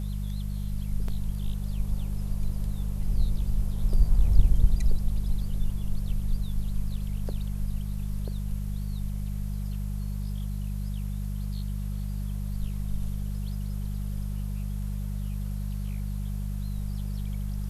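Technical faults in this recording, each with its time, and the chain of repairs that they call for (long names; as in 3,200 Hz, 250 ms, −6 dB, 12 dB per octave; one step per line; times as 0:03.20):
mains hum 50 Hz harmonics 4 −31 dBFS
0:01.08: drop-out 4 ms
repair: hum removal 50 Hz, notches 4
repair the gap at 0:01.08, 4 ms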